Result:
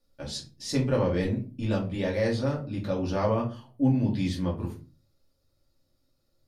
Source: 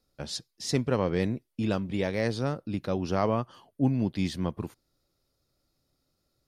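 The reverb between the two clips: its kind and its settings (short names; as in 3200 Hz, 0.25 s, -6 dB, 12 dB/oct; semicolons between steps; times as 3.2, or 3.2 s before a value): shoebox room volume 150 m³, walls furnished, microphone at 2.5 m; gain -5.5 dB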